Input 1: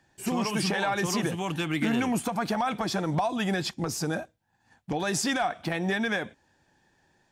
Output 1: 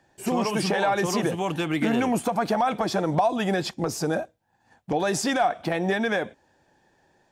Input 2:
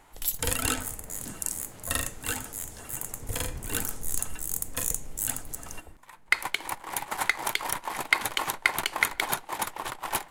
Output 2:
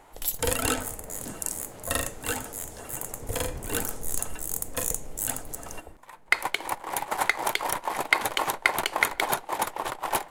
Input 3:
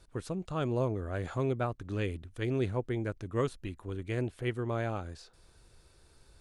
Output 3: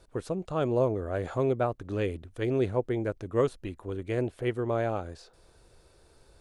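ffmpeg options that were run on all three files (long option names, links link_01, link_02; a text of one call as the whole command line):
ffmpeg -i in.wav -af "equalizer=frequency=550:width=0.83:gain=7.5" out.wav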